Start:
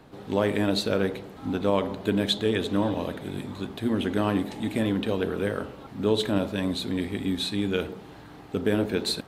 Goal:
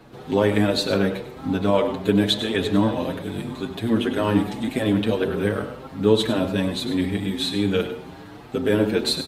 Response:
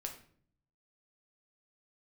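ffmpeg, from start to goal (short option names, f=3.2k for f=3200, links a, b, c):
-filter_complex "[0:a]asplit=2[a][b];[1:a]atrim=start_sample=2205,adelay=98[c];[b][c]afir=irnorm=-1:irlink=0,volume=-8.5dB[d];[a][d]amix=inputs=2:normalize=0,asplit=2[e][f];[f]adelay=6.7,afreqshift=1.8[g];[e][g]amix=inputs=2:normalize=1,volume=7dB"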